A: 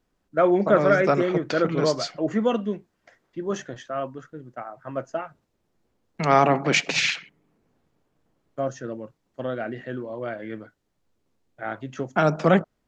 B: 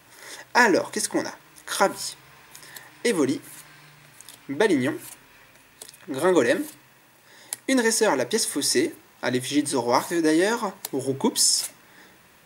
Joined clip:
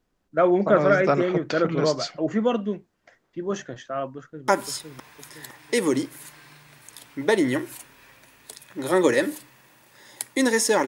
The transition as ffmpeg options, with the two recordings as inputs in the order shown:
-filter_complex "[0:a]apad=whole_dur=10.87,atrim=end=10.87,atrim=end=4.482[a];[1:a]atrim=start=1.798:end=8.19[b];[a][b]acrossfade=d=0.004:c1=hsin:c2=hsin,asplit=2[c][d];[d]afade=t=in:st=4.16:d=0.01,afade=t=out:st=4.48:d=0.01,aecho=0:1:510|1020|1530|2040|2550|3060:0.707946|0.318576|0.143359|0.0645116|0.0290302|0.0130636[e];[c][e]amix=inputs=2:normalize=0"

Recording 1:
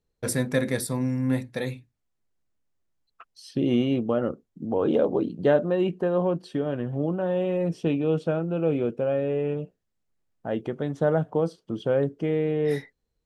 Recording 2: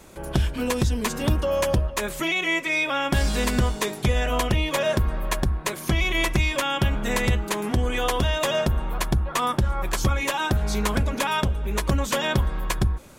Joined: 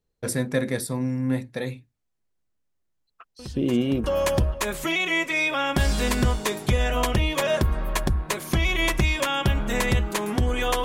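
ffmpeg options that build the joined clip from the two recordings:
-filter_complex "[1:a]asplit=2[a][b];[0:a]apad=whole_dur=10.84,atrim=end=10.84,atrim=end=4.042[c];[b]atrim=start=1.398:end=8.2[d];[a]atrim=start=0.75:end=1.4,asetpts=PTS-STARTPTS,volume=-15.5dB,afade=t=in:d=0.004:c=hsin,afade=t=out:st=0.646:d=0.004:c=hsin,adelay=3390[e];[c][d]acrossfade=d=0.004:c1=hsin:c2=hsin[f];[f][e]amix=inputs=2:normalize=0"

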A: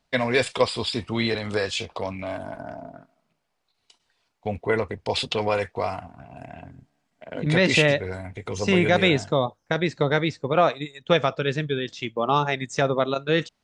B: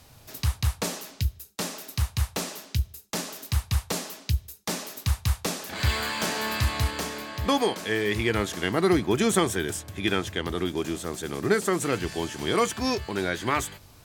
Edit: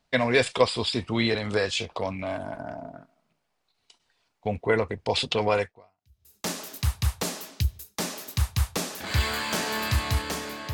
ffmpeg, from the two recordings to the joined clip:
-filter_complex "[0:a]apad=whole_dur=10.73,atrim=end=10.73,atrim=end=6.37,asetpts=PTS-STARTPTS[a];[1:a]atrim=start=2.3:end=7.42,asetpts=PTS-STARTPTS[b];[a][b]acrossfade=d=0.76:c1=exp:c2=exp"

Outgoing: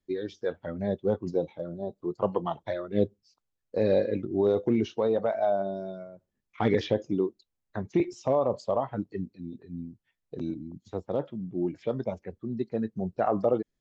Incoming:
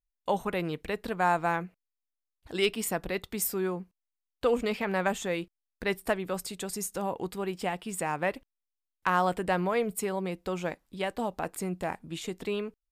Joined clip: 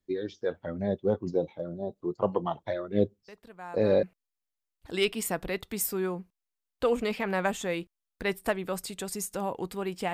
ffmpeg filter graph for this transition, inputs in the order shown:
-filter_complex "[1:a]asplit=2[a][b];[0:a]apad=whole_dur=10.13,atrim=end=10.13,atrim=end=4.032[c];[b]atrim=start=1.638:end=7.74[d];[a]atrim=start=0.89:end=1.64,asetpts=PTS-STARTPTS,volume=-17dB,afade=t=in:d=0.004:c=hsin,afade=t=out:st=0.746:d=0.004:c=hsin,adelay=3280[e];[c][d]acrossfade=d=0.004:c1=hsin:c2=hsin[f];[f][e]amix=inputs=2:normalize=0"

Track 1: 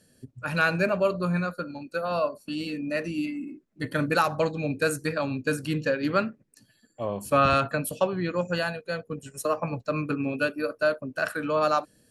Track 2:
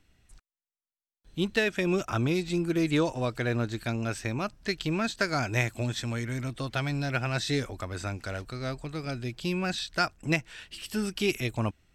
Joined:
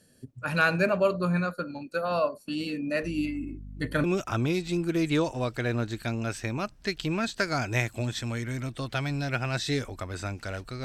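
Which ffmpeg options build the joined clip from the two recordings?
-filter_complex "[0:a]asettb=1/sr,asplit=3[a][b][c];[a]atrim=end=3.034[d];[b]atrim=start=3.03:end=4.04,asetpts=PTS-STARTPTS,afade=t=in:d=0.004:c=qsin,afade=t=out:st=1.006:d=0.004:c=qsin,aeval=exprs='val(0)+0.01*(sin(2*PI*50*n/s)+sin(2*PI*2*50*n/s)/2+sin(2*PI*3*50*n/s)/3+sin(2*PI*4*50*n/s)/4+sin(2*PI*5*50*n/s)/5)':c=same[e];[c]atrim=start=4.036[f];[d][e]acrossfade=d=0.004:c1=hsin:c2=qsin[g];[g][f]acrossfade=d=0.004:c1=qsin:c2=hsin,apad=whole_dur=10.84,atrim=end=10.84,atrim=end=4.042[h];[1:a]atrim=start=1.848:end=8.65[i];[h][i]acrossfade=d=0.004:c1=hsin:c2=hsin"

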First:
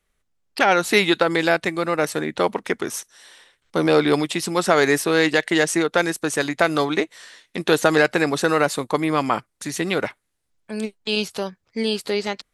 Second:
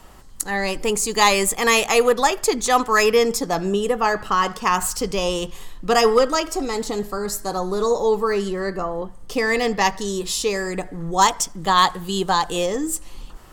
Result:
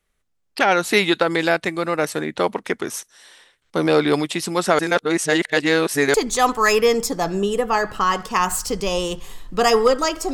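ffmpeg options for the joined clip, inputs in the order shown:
-filter_complex "[0:a]apad=whole_dur=10.33,atrim=end=10.33,asplit=2[a][b];[a]atrim=end=4.792[c];[b]atrim=start=4.788:end=6.142,asetpts=PTS-STARTPTS,areverse[d];[1:a]atrim=start=2.448:end=6.64[e];[c][d]acrossfade=d=0.004:c1=hsin:c2=hsin[f];[f][e]acrossfade=d=0.004:c1=hsin:c2=hsin"

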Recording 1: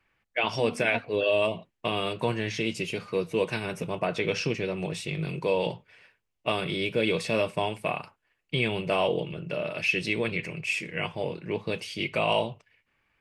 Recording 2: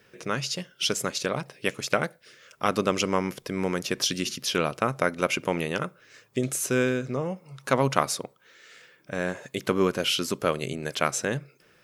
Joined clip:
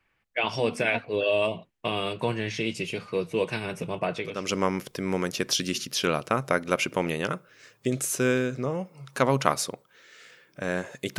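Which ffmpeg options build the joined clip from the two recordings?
-filter_complex "[0:a]apad=whole_dur=11.18,atrim=end=11.18,atrim=end=4.56,asetpts=PTS-STARTPTS[a];[1:a]atrim=start=2.63:end=9.69,asetpts=PTS-STARTPTS[b];[a][b]acrossfade=d=0.44:c1=qua:c2=qua"

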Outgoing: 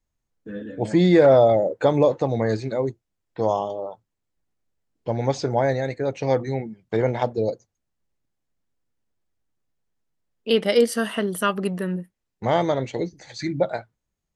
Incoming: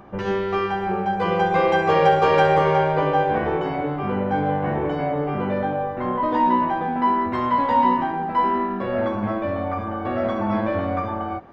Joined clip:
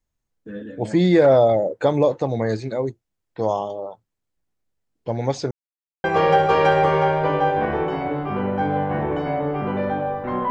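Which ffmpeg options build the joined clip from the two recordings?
-filter_complex "[0:a]apad=whole_dur=10.5,atrim=end=10.5,asplit=2[a][b];[a]atrim=end=5.51,asetpts=PTS-STARTPTS,afade=t=out:st=5.506:d=0.004:c=hsin[c];[b]atrim=start=5.51:end=6.04,asetpts=PTS-STARTPTS,volume=0[d];[1:a]atrim=start=1.77:end=6.23,asetpts=PTS-STARTPTS,afade=t=in:d=0.004:c=hsin[e];[c][d][e]concat=n=3:v=0:a=1"

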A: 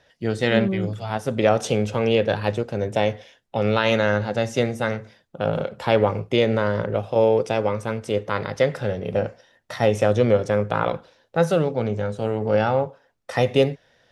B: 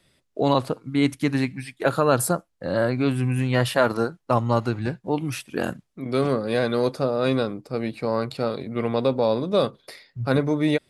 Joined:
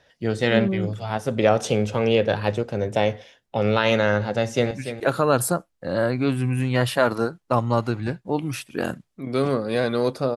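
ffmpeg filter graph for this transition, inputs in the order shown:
-filter_complex "[0:a]apad=whole_dur=10.36,atrim=end=10.36,atrim=end=4.712[a];[1:a]atrim=start=1.498:end=7.15[b];[a][b]acrossfade=d=0.004:c1=hsin:c2=hsin,asplit=2[c][d];[d]afade=t=in:st=4.33:d=0.01,afade=t=out:st=4.71:d=0.01,aecho=0:1:290|580:0.298538|0.0447807[e];[c][e]amix=inputs=2:normalize=0"

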